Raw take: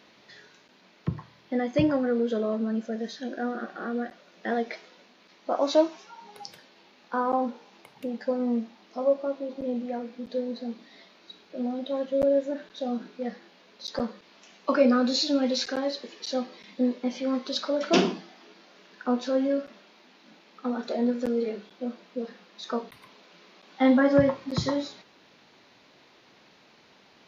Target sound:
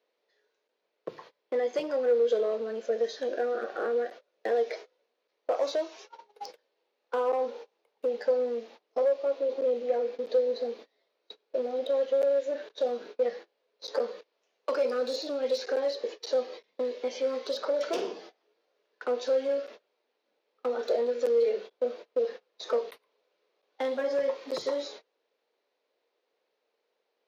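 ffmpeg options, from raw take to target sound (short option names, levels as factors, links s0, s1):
-filter_complex "[0:a]agate=range=0.0447:threshold=0.00631:ratio=16:detection=peak,acrossover=split=1700|4200[s0][s1][s2];[s0]acompressor=threshold=0.0178:ratio=4[s3];[s1]acompressor=threshold=0.00398:ratio=4[s4];[s2]acompressor=threshold=0.00447:ratio=4[s5];[s3][s4][s5]amix=inputs=3:normalize=0,asplit=2[s6][s7];[s7]aeval=exprs='0.0251*(abs(mod(val(0)/0.0251+3,4)-2)-1)':c=same,volume=0.708[s8];[s6][s8]amix=inputs=2:normalize=0,highpass=f=470:t=q:w=4.9,volume=0.708"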